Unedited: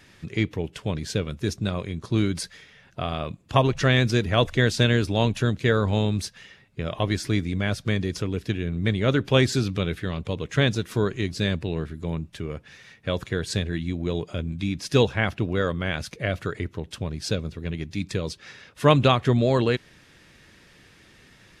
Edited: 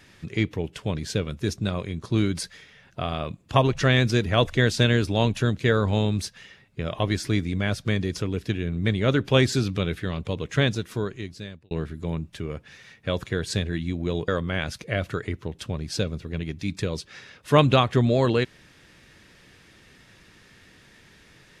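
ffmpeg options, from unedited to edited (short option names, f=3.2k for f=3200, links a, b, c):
-filter_complex "[0:a]asplit=3[a][b][c];[a]atrim=end=11.71,asetpts=PTS-STARTPTS,afade=t=out:st=10.53:d=1.18[d];[b]atrim=start=11.71:end=14.282,asetpts=PTS-STARTPTS,afade=t=in:d=0.004:c=hsin[e];[c]atrim=start=15.598[f];[d][e]concat=n=2:v=0:a=1[g];[g][f]acrossfade=d=0.004:c1=hsin:c2=hsin"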